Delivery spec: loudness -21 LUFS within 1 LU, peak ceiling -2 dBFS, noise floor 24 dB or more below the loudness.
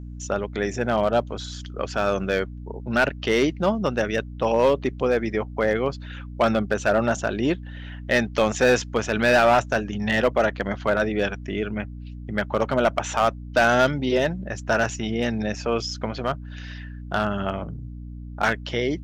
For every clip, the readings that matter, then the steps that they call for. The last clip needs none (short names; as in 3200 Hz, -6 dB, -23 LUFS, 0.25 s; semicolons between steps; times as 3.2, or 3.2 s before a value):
clipped 0.5%; flat tops at -11.5 dBFS; hum 60 Hz; harmonics up to 300 Hz; hum level -34 dBFS; loudness -23.5 LUFS; peak -11.5 dBFS; loudness target -21.0 LUFS
-> clip repair -11.5 dBFS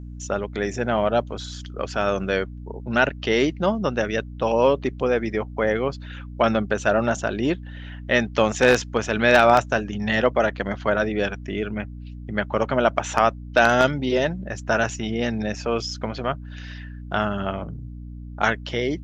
clipped 0.0%; hum 60 Hz; harmonics up to 300 Hz; hum level -34 dBFS
-> de-hum 60 Hz, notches 5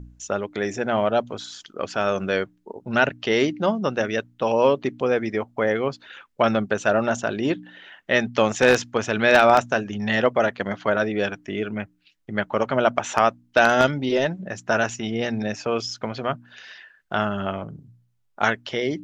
hum none; loudness -22.5 LUFS; peak -1.5 dBFS; loudness target -21.0 LUFS
-> gain +1.5 dB; limiter -2 dBFS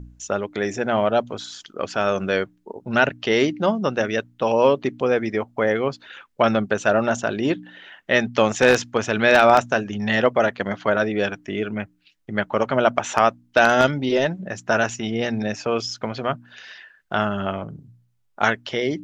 loudness -21.5 LUFS; peak -2.0 dBFS; noise floor -64 dBFS